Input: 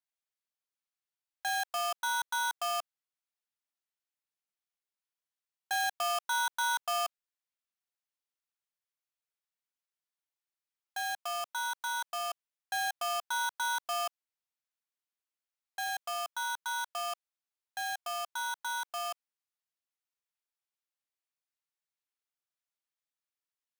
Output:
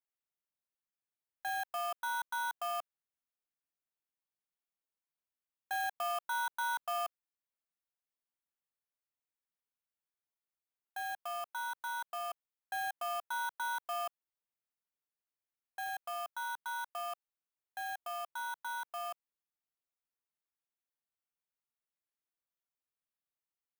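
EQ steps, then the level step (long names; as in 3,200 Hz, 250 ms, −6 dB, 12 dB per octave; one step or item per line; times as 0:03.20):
parametric band 5,600 Hz −10.5 dB 1.9 octaves
−2.5 dB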